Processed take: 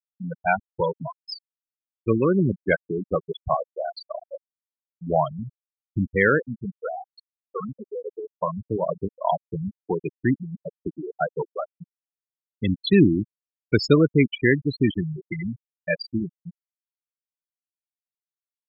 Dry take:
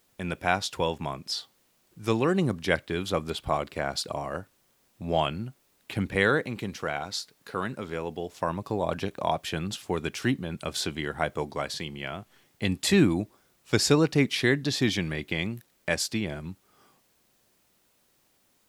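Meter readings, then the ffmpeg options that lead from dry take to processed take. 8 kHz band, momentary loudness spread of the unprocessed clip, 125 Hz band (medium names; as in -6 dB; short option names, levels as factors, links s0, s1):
under -15 dB, 12 LU, +4.0 dB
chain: -af "afftfilt=real='re*gte(hypot(re,im),0.158)':imag='im*gte(hypot(re,im),0.158)':win_size=1024:overlap=0.75,bandreject=f=5500:w=8.5,aresample=32000,aresample=44100,volume=1.78"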